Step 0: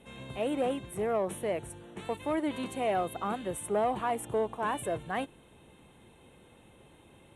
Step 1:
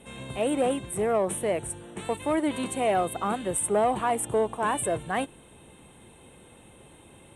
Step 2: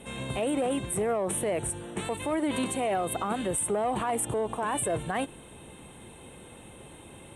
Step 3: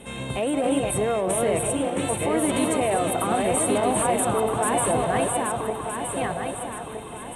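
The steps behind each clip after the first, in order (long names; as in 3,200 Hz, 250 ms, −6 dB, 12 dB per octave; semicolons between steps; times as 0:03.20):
parametric band 8,600 Hz +12 dB 0.29 octaves; level +5 dB
brickwall limiter −24.5 dBFS, peak gain reduction 10.5 dB; level +4 dB
feedback delay that plays each chunk backwards 634 ms, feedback 62%, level −2.5 dB; echo through a band-pass that steps 174 ms, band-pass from 660 Hz, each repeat 0.7 octaves, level −6.5 dB; level +3.5 dB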